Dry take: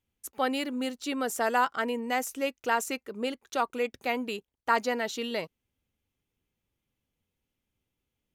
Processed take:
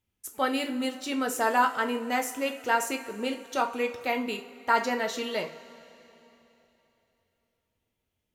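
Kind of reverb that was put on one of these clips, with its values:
coupled-rooms reverb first 0.31 s, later 3.3 s, from −19 dB, DRR 3 dB

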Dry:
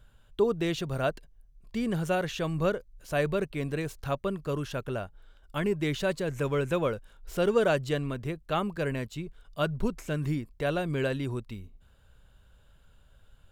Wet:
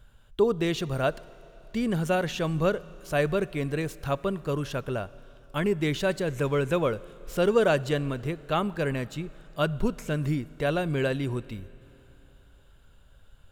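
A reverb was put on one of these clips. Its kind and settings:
four-comb reverb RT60 3.3 s, combs from 25 ms, DRR 19.5 dB
level +2.5 dB

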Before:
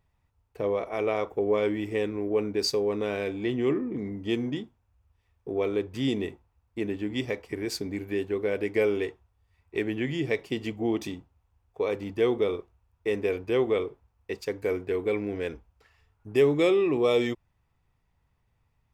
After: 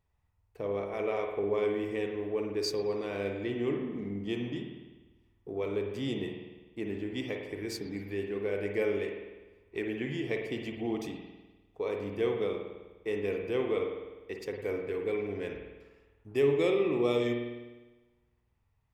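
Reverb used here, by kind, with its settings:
spring reverb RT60 1.2 s, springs 50 ms, chirp 75 ms, DRR 2.5 dB
level −6.5 dB

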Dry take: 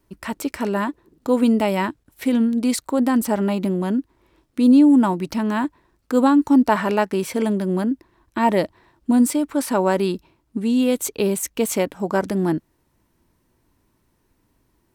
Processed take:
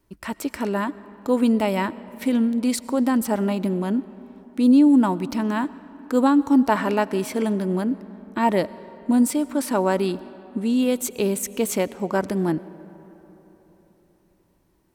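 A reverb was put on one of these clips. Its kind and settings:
comb and all-pass reverb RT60 4 s, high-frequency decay 0.5×, pre-delay 60 ms, DRR 17.5 dB
level −2 dB

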